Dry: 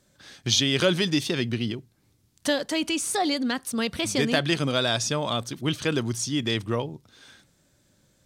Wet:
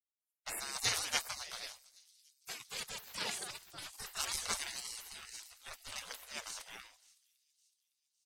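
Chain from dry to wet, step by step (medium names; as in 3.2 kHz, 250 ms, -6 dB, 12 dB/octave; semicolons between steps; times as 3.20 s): 1.70–2.66 s: bass shelf 270 Hz -8.5 dB; delay 326 ms -20.5 dB; spectral gate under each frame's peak -30 dB weak; feedback echo behind a high-pass 559 ms, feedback 67%, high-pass 4.1 kHz, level -11 dB; three bands expanded up and down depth 100%; trim +3.5 dB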